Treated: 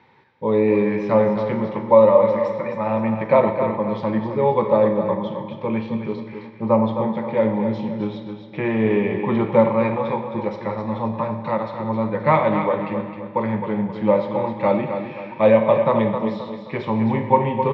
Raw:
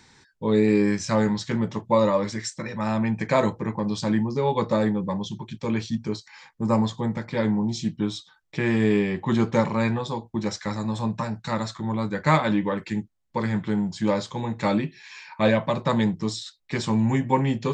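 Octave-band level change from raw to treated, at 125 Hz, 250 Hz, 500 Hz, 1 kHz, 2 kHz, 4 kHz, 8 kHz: 0.0 dB, +1.5 dB, +8.0 dB, +6.0 dB, 0.0 dB, −7.5 dB, below −25 dB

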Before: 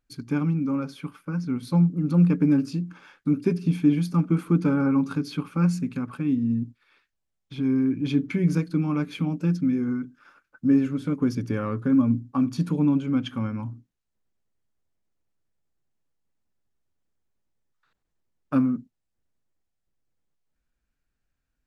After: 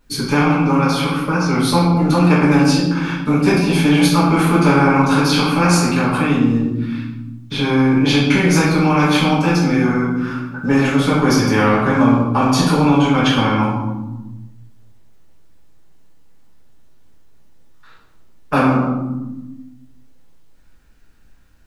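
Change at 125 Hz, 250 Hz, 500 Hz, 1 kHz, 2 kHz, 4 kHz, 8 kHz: +8.5 dB, +8.0 dB, +14.5 dB, +21.0 dB, +21.0 dB, +22.0 dB, can't be measured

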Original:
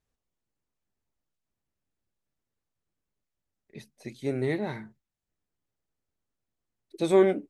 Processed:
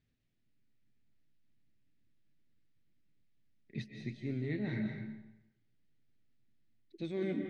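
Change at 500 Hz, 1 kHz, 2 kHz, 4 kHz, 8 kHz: −16.0 dB, −21.5 dB, −7.5 dB, −9.5 dB, below −15 dB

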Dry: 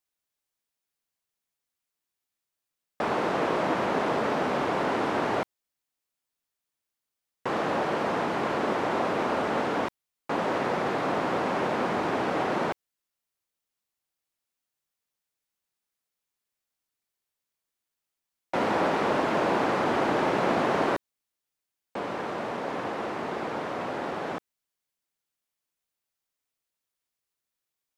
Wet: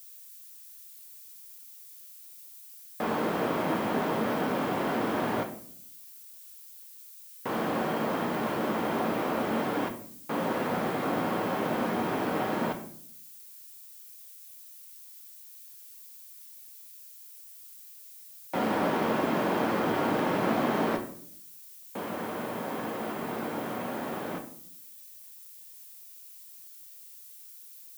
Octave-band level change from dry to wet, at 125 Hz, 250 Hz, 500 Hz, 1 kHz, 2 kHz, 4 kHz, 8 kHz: +0.5, +0.5, −3.0, −3.5, −3.5, −2.5, +3.5 decibels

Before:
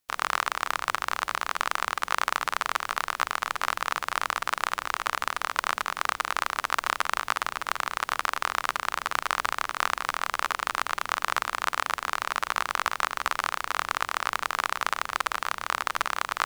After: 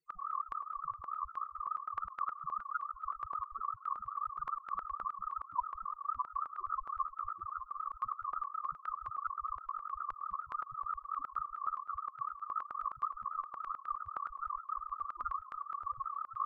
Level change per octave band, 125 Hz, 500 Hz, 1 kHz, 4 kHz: below −10 dB, below −25 dB, −9.0 dB, below −40 dB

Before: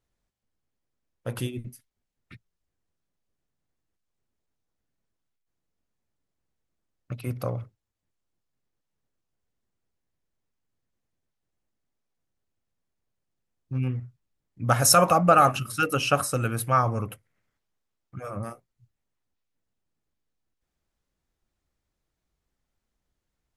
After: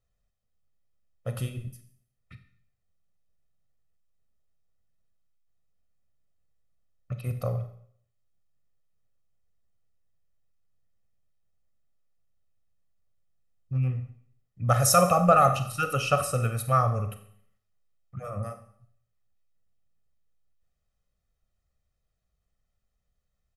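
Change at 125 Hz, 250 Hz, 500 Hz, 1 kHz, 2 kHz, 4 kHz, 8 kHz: +1.5, −2.0, −0.5, −1.5, −4.5, −5.5, −3.5 decibels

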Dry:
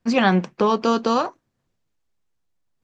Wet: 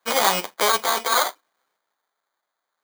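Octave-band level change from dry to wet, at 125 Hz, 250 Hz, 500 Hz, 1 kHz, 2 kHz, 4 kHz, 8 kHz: below −15 dB, −17.0 dB, −4.0 dB, +0.5 dB, +2.5 dB, +7.5 dB, can't be measured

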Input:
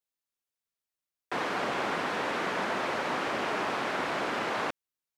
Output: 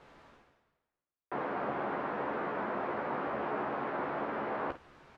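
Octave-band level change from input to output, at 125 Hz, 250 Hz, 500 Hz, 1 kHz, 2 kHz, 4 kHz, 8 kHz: −2.5 dB, −2.5 dB, −2.5 dB, −4.0 dB, −8.5 dB, −18.5 dB, below −25 dB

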